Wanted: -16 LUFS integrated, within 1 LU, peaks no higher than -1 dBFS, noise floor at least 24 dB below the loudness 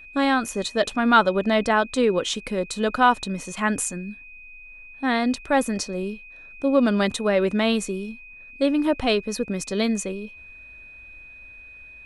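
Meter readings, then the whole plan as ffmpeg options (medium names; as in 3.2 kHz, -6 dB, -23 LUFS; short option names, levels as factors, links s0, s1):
steady tone 2.5 kHz; tone level -42 dBFS; loudness -23.0 LUFS; peak level -5.0 dBFS; loudness target -16.0 LUFS
-> -af "bandreject=f=2500:w=30"
-af "volume=2.24,alimiter=limit=0.891:level=0:latency=1"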